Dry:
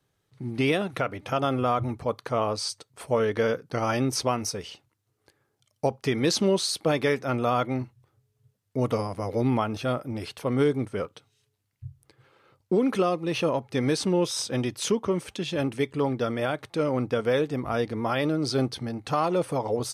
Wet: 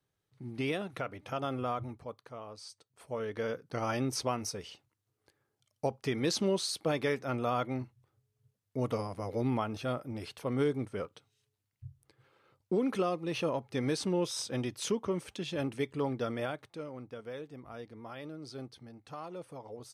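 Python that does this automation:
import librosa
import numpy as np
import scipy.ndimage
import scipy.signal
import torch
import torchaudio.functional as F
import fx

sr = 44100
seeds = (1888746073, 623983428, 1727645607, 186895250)

y = fx.gain(x, sr, db=fx.line((1.72, -9.5), (2.42, -20.0), (3.8, -7.0), (16.41, -7.0), (16.93, -18.5)))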